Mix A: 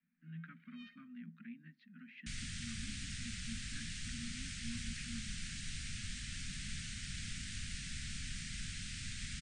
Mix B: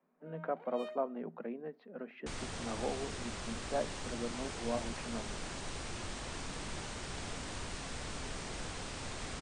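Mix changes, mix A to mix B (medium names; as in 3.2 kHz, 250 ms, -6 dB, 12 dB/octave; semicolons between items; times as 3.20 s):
first sound: remove distance through air 230 m; master: remove inverse Chebyshev band-stop 390–950 Hz, stop band 50 dB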